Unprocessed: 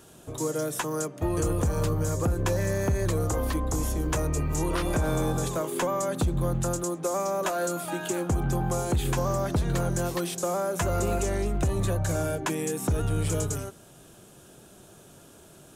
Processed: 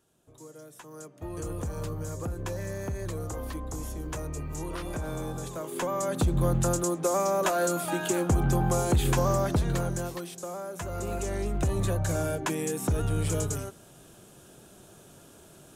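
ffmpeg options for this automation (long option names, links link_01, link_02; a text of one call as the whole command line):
ffmpeg -i in.wav -af "volume=10dB,afade=type=in:start_time=0.79:duration=0.77:silence=0.298538,afade=type=in:start_time=5.54:duration=0.92:silence=0.316228,afade=type=out:start_time=9.32:duration=0.94:silence=0.281838,afade=type=in:start_time=10.88:duration=0.82:silence=0.398107" out.wav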